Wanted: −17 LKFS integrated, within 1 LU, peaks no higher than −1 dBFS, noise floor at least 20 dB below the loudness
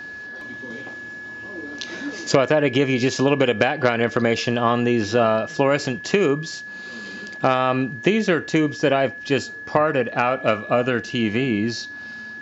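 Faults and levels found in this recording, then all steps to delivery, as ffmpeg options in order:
interfering tone 1,700 Hz; level of the tone −33 dBFS; integrated loudness −21.0 LKFS; sample peak −2.5 dBFS; target loudness −17.0 LKFS
→ -af "bandreject=frequency=1700:width=30"
-af "volume=4dB,alimiter=limit=-1dB:level=0:latency=1"

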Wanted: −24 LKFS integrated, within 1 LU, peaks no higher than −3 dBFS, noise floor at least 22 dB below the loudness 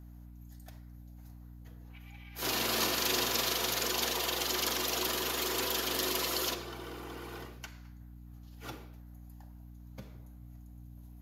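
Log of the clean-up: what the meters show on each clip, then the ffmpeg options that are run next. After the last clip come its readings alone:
mains hum 60 Hz; hum harmonics up to 300 Hz; level of the hum −47 dBFS; integrated loudness −31.0 LKFS; sample peak −16.0 dBFS; target loudness −24.0 LKFS
→ -af "bandreject=frequency=60:width_type=h:width=6,bandreject=frequency=120:width_type=h:width=6,bandreject=frequency=180:width_type=h:width=6,bandreject=frequency=240:width_type=h:width=6,bandreject=frequency=300:width_type=h:width=6"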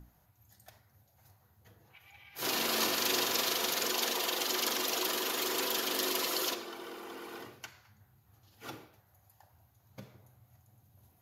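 mains hum none found; integrated loudness −31.0 LKFS; sample peak −16.0 dBFS; target loudness −24.0 LKFS
→ -af "volume=7dB"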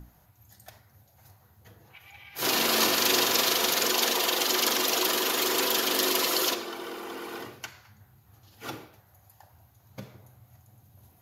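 integrated loudness −24.0 LKFS; sample peak −9.0 dBFS; background noise floor −61 dBFS

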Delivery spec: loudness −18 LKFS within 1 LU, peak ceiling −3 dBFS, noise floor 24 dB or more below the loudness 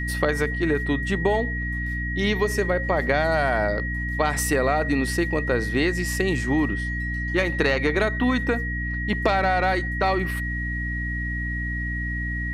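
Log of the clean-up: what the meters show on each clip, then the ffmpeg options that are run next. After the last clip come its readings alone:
mains hum 60 Hz; hum harmonics up to 300 Hz; level of the hum −27 dBFS; interfering tone 1,900 Hz; level of the tone −29 dBFS; integrated loudness −24.0 LKFS; sample peak −7.5 dBFS; target loudness −18.0 LKFS
→ -af "bandreject=frequency=60:width_type=h:width=4,bandreject=frequency=120:width_type=h:width=4,bandreject=frequency=180:width_type=h:width=4,bandreject=frequency=240:width_type=h:width=4,bandreject=frequency=300:width_type=h:width=4"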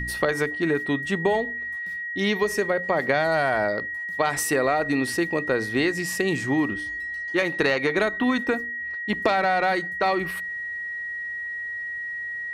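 mains hum none found; interfering tone 1,900 Hz; level of the tone −29 dBFS
→ -af "bandreject=frequency=1900:width=30"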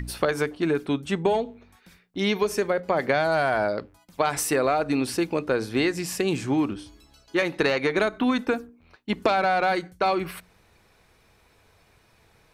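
interfering tone none found; integrated loudness −25.0 LKFS; sample peak −8.0 dBFS; target loudness −18.0 LKFS
→ -af "volume=7dB,alimiter=limit=-3dB:level=0:latency=1"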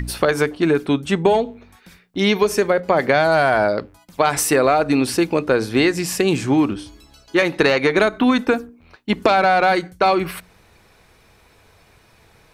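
integrated loudness −18.0 LKFS; sample peak −3.0 dBFS; background noise floor −54 dBFS

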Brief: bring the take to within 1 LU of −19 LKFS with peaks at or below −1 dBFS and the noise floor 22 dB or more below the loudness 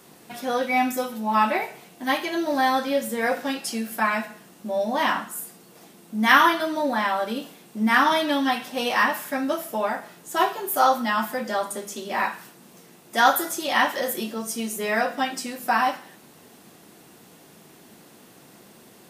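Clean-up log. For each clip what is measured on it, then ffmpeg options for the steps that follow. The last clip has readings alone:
integrated loudness −23.5 LKFS; sample peak −2.5 dBFS; target loudness −19.0 LKFS
→ -af "volume=4.5dB,alimiter=limit=-1dB:level=0:latency=1"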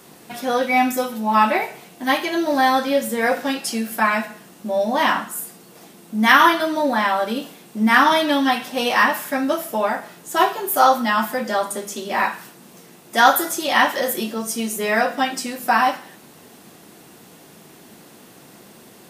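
integrated loudness −19.5 LKFS; sample peak −1.0 dBFS; background noise floor −47 dBFS

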